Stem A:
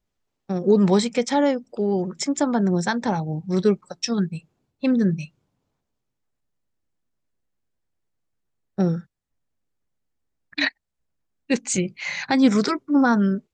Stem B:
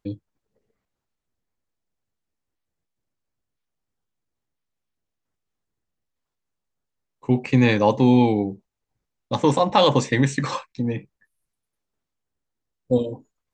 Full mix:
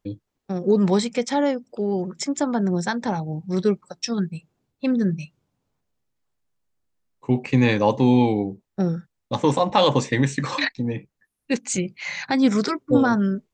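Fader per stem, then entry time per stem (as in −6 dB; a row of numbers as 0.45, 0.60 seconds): −1.5, −1.0 decibels; 0.00, 0.00 seconds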